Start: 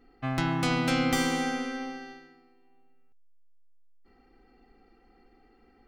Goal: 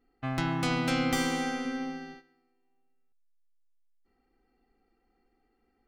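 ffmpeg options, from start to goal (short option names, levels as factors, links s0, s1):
-filter_complex "[0:a]agate=range=0.316:threshold=0.00398:ratio=16:detection=peak,asettb=1/sr,asplit=3[s0][s1][s2];[s0]atrim=end=1.654[s3];[s1]atrim=start=1.65:end=2.15,asetpts=PTS-STARTPTS,afade=t=in:d=0.004:c=qsin,afade=t=out:st=0.496:d=0.004:c=qsin,equalizer=f=160:t=o:w=1.1:g=11.5[s4];[s2]atrim=start=2.146[s5];[s3][s4]acrossfade=d=0.004:c1=hsin:c2=qsin[s6];[s6][s5]acrossfade=d=0.004:c1=qsin:c2=hsin,volume=0.794"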